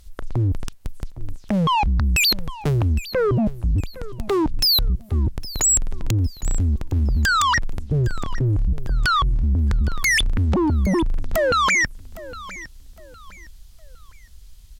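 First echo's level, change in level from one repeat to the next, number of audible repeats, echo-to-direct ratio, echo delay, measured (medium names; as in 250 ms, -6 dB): -17.5 dB, -10.0 dB, 2, -17.0 dB, 810 ms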